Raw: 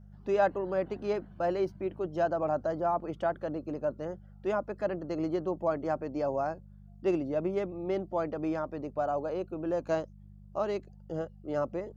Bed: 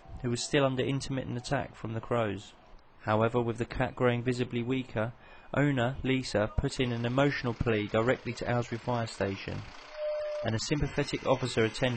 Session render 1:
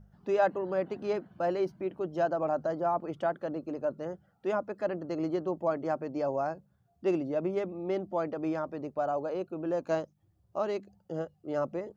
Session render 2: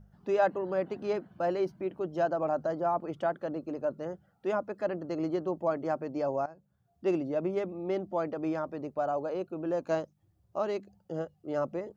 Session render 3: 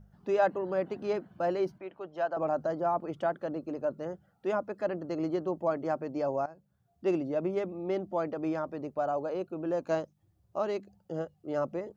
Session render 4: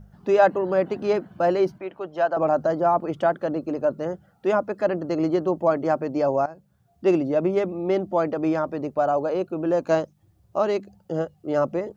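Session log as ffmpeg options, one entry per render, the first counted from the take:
ffmpeg -i in.wav -af "bandreject=frequency=50:width_type=h:width=4,bandreject=frequency=100:width_type=h:width=4,bandreject=frequency=150:width_type=h:width=4,bandreject=frequency=200:width_type=h:width=4" out.wav
ffmpeg -i in.wav -filter_complex "[0:a]asplit=2[link_01][link_02];[link_01]atrim=end=6.46,asetpts=PTS-STARTPTS,afade=type=out:start_time=6.456:duration=0.004:curve=hsin:silence=0.133352[link_03];[link_02]atrim=start=6.46,asetpts=PTS-STARTPTS,afade=type=in:duration=0.74:curve=qsin:silence=0.133352[link_04];[link_03][link_04]concat=n=2:v=0:a=1" out.wav
ffmpeg -i in.wav -filter_complex "[0:a]asettb=1/sr,asplit=3[link_01][link_02][link_03];[link_01]atrim=end=1.784[link_04];[link_02]atrim=start=1.78:end=2.37,asetpts=PTS-STARTPTS,afade=type=in:duration=0.004:curve=qsin,afade=type=out:start_time=0.586:duration=0.004:curve=qsin,acrossover=split=550 4300:gain=0.224 1 0.251[link_05][link_06][link_07];[link_05][link_06][link_07]amix=inputs=3:normalize=0[link_08];[link_03]atrim=start=2.366[link_09];[link_04][link_08]acrossfade=duration=0.004:curve1=hsin:curve2=qsin[link_10];[link_10][link_09]acrossfade=duration=0.004:curve1=qsin:curve2=hsin" out.wav
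ffmpeg -i in.wav -af "volume=9dB" out.wav

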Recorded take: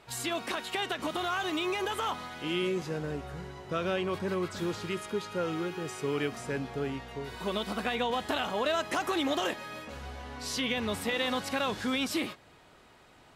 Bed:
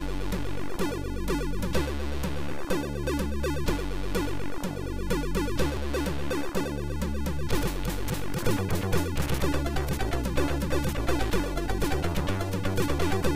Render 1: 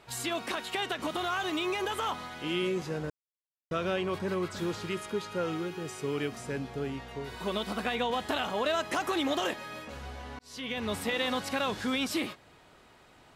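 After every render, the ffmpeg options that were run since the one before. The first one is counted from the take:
ffmpeg -i in.wav -filter_complex "[0:a]asettb=1/sr,asplit=3[link_01][link_02][link_03];[link_01]atrim=end=5.574[link_04];[link_02]atrim=start=5.57:end=6.98,asetpts=PTS-STARTPTS,afade=type=in:duration=0.004:curve=qsin,afade=type=out:start_time=1.406:duration=0.004:curve=qsin,equalizer=frequency=1200:width_type=o:width=2.8:gain=-3[link_05];[link_03]atrim=start=6.976[link_06];[link_04][link_05]acrossfade=duration=0.004:curve1=hsin:curve2=qsin[link_07];[link_07][link_06]acrossfade=duration=0.004:curve1=qsin:curve2=hsin,asplit=4[link_08][link_09][link_10][link_11];[link_08]atrim=end=3.1,asetpts=PTS-STARTPTS,afade=type=out:start_time=3.096:duration=0.004:curve=hsin[link_12];[link_09]atrim=start=3.1:end=3.71,asetpts=PTS-STARTPTS,volume=0[link_13];[link_10]atrim=start=3.71:end=10.39,asetpts=PTS-STARTPTS,afade=type=in:duration=0.004:curve=hsin,afade=type=out:start_time=6.676:duration=0.004:curve=hsin[link_14];[link_11]atrim=start=10.39,asetpts=PTS-STARTPTS,afade=type=in:duration=0.53[link_15];[link_12][link_13][link_14][link_15]concat=n=4:v=0:a=1" out.wav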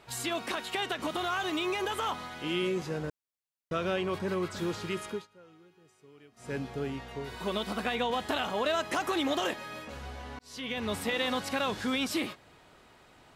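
ffmpeg -i in.wav -filter_complex "[0:a]asplit=3[link_01][link_02][link_03];[link_01]atrim=end=5.27,asetpts=PTS-STARTPTS,afade=type=out:start_time=5.09:duration=0.18:silence=0.0668344[link_04];[link_02]atrim=start=5.27:end=6.36,asetpts=PTS-STARTPTS,volume=-23.5dB[link_05];[link_03]atrim=start=6.36,asetpts=PTS-STARTPTS,afade=type=in:duration=0.18:silence=0.0668344[link_06];[link_04][link_05][link_06]concat=n=3:v=0:a=1" out.wav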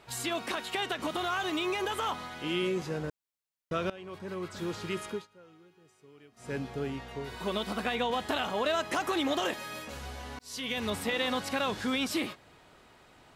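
ffmpeg -i in.wav -filter_complex "[0:a]asettb=1/sr,asplit=3[link_01][link_02][link_03];[link_01]atrim=end=9.534[link_04];[link_02]atrim=start=9.53:end=10.9,asetpts=PTS-STARTPTS,afade=type=in:duration=0.004:curve=qsin,afade=type=out:start_time=1.366:duration=0.004:curve=qsin,highshelf=frequency=4900:gain=10[link_05];[link_03]atrim=start=10.896[link_06];[link_04][link_05]acrossfade=duration=0.004:curve1=hsin:curve2=qsin[link_07];[link_07][link_06]acrossfade=duration=0.004:curve1=qsin:curve2=hsin,asplit=2[link_08][link_09];[link_08]atrim=end=3.9,asetpts=PTS-STARTPTS,afade=type=out:start_time=3.896:duration=0.004:curve=hsin:silence=0.11885[link_10];[link_09]atrim=start=3.9,asetpts=PTS-STARTPTS,afade=type=in:duration=1.06:silence=0.11885[link_11];[link_10][link_11]concat=n=2:v=0:a=1" out.wav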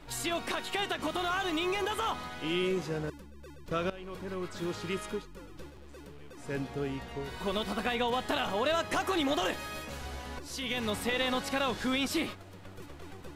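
ffmpeg -i in.wav -i bed.wav -filter_complex "[1:a]volume=-21dB[link_01];[0:a][link_01]amix=inputs=2:normalize=0" out.wav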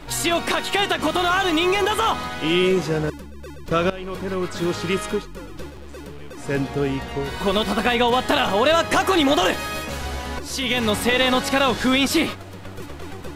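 ffmpeg -i in.wav -af "volume=12dB" out.wav

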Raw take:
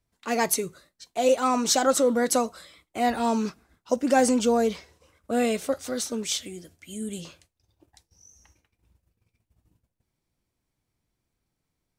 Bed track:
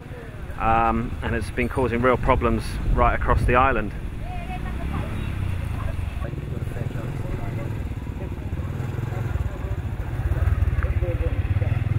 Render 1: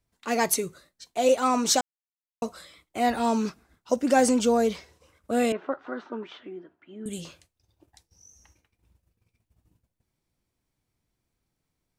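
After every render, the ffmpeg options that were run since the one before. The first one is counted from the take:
ffmpeg -i in.wav -filter_complex "[0:a]asettb=1/sr,asplit=3[link_01][link_02][link_03];[link_01]atrim=end=5.524[link_04];[link_02]atrim=start=5.52:end=7.06,asetpts=PTS-STARTPTS,afade=type=in:duration=0.004:curve=qsin,afade=type=out:start_time=1.536:duration=0.004:curve=qsin,highpass=300,equalizer=frequency=350:width_type=q:width=4:gain=6,equalizer=frequency=500:width_type=q:width=4:gain=-7,equalizer=frequency=970:width_type=q:width=4:gain=7,equalizer=frequency=1400:width_type=q:width=4:gain=4,equalizer=frequency=2200:width_type=q:width=4:gain=-8,lowpass=frequency=2200:width=0.5412,lowpass=frequency=2200:width=1.3066[link_05];[link_03]atrim=start=7.056[link_06];[link_04][link_05]acrossfade=duration=0.004:curve1=hsin:curve2=qsin[link_07];[link_07][link_06]acrossfade=duration=0.004:curve1=qsin:curve2=hsin,asplit=3[link_08][link_09][link_10];[link_08]atrim=end=1.81,asetpts=PTS-STARTPTS,afade=type=out:start_time=1.806:duration=0.004:curve=hsin[link_11];[link_09]atrim=start=1.81:end=2.42,asetpts=PTS-STARTPTS,volume=0[link_12];[link_10]atrim=start=2.42,asetpts=PTS-STARTPTS,afade=type=in:duration=0.004:curve=hsin[link_13];[link_11][link_12][link_13]concat=n=3:v=0:a=1" out.wav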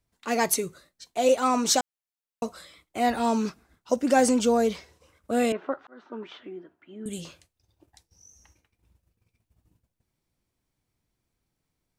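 ffmpeg -i in.wav -filter_complex "[0:a]asplit=2[link_01][link_02];[link_01]atrim=end=5.87,asetpts=PTS-STARTPTS,afade=type=out:start_time=5.866:duration=0.004:curve=hsin[link_03];[link_02]atrim=start=5.87,asetpts=PTS-STARTPTS,afade=type=in:duration=0.4[link_04];[link_03][link_04]concat=n=2:v=0:a=1" out.wav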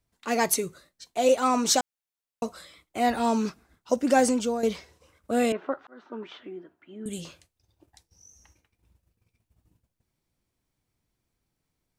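ffmpeg -i in.wav -filter_complex "[0:a]asplit=2[link_01][link_02];[link_01]atrim=end=4.63,asetpts=PTS-STARTPTS,afade=type=out:start_time=4.16:duration=0.47:silence=0.334965[link_03];[link_02]atrim=start=4.63,asetpts=PTS-STARTPTS,afade=type=in:duration=0.004:curve=hsin:silence=0.334965[link_04];[link_03][link_04]concat=n=2:v=0:a=1" out.wav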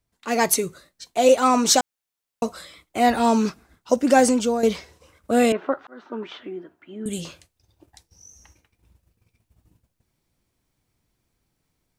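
ffmpeg -i in.wav -af "dynaudnorm=framelen=210:gausssize=3:maxgain=6dB" out.wav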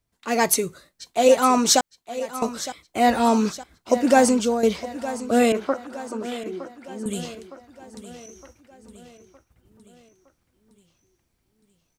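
ffmpeg -i in.wav -af "aecho=1:1:913|1826|2739|3652|4565:0.2|0.104|0.054|0.0281|0.0146" out.wav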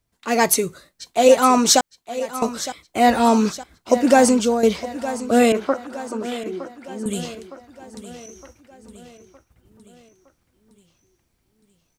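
ffmpeg -i in.wav -af "volume=3dB,alimiter=limit=-2dB:level=0:latency=1" out.wav

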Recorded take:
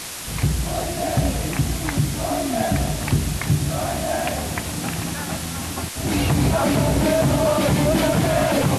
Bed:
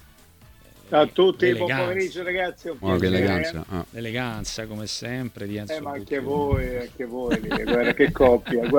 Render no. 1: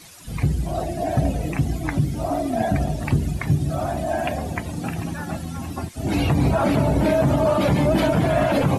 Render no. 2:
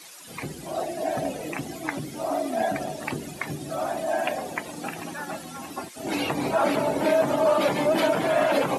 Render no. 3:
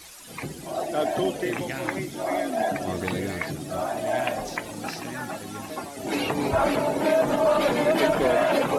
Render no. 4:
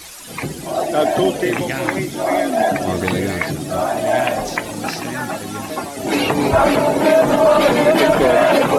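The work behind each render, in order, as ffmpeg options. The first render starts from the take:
ffmpeg -i in.wav -af "afftdn=noise_reduction=16:noise_floor=-30" out.wav
ffmpeg -i in.wav -af "highpass=370,bandreject=frequency=700:width=23" out.wav
ffmpeg -i in.wav -i bed.wav -filter_complex "[1:a]volume=-10dB[link_01];[0:a][link_01]amix=inputs=2:normalize=0" out.wav
ffmpeg -i in.wav -af "volume=9dB,alimiter=limit=-3dB:level=0:latency=1" out.wav

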